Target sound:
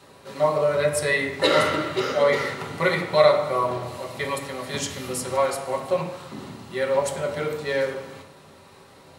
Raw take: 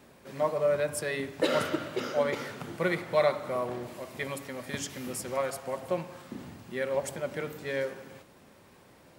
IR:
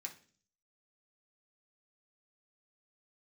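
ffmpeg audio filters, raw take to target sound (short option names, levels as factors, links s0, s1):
-filter_complex "[0:a]asettb=1/sr,asplit=3[s0][s1][s2];[s0]atrim=end=0.804[s3];[s1]atrim=start=0.8:end=2.89,asetpts=PTS-STARTPTS,afade=t=in:d=0.004:c=qsin,afade=t=out:st=2.086:d=0.004:c=qsin,equalizer=f=2000:t=o:w=0.25:g=7.5[s4];[s2]atrim=start=2.886[s5];[s3][s4]acrossfade=d=0.004:c1=hsin:c2=qsin[s6];[s6][s5]acrossfade=d=0.004:c1=qsin:c2=hsin[s7];[1:a]atrim=start_sample=2205,asetrate=22932,aresample=44100[s8];[s7][s8]afir=irnorm=-1:irlink=0,volume=2.24"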